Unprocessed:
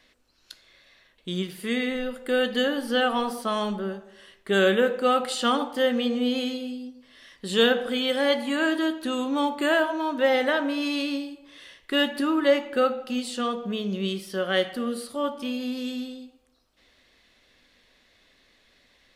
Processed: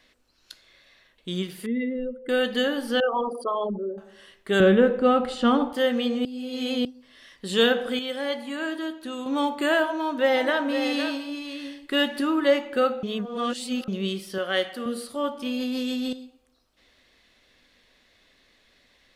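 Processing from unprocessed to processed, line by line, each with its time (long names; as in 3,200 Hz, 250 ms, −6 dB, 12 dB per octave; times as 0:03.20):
0:01.66–0:02.29: expanding power law on the bin magnitudes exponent 2.3
0:03.00–0:03.98: spectral envelope exaggerated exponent 3
0:04.60–0:05.73: RIAA equalisation playback
0:06.25–0:06.85: reverse
0:07.99–0:09.26: clip gain −6 dB
0:09.85–0:12.29: single-tap delay 511 ms −8 dB
0:13.03–0:13.88: reverse
0:14.38–0:14.86: high-pass filter 370 Hz 6 dB per octave
0:15.46–0:16.13: envelope flattener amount 100%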